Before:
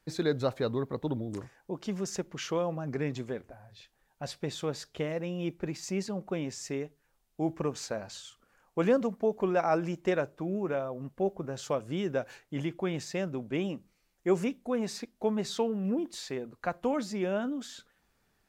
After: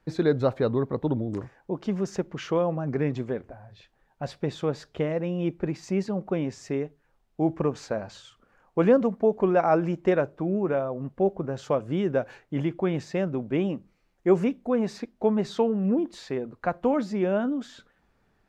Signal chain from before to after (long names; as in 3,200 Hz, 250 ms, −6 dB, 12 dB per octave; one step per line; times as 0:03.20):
low-pass filter 1,500 Hz 6 dB per octave
level +6.5 dB